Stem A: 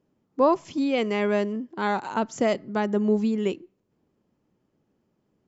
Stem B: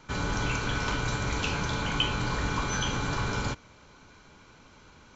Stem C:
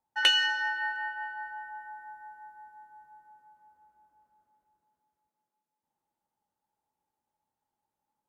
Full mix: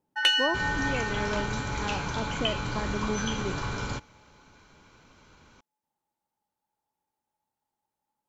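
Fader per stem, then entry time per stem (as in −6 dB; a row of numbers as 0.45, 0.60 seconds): −9.5, −2.5, 0.0 decibels; 0.00, 0.45, 0.00 seconds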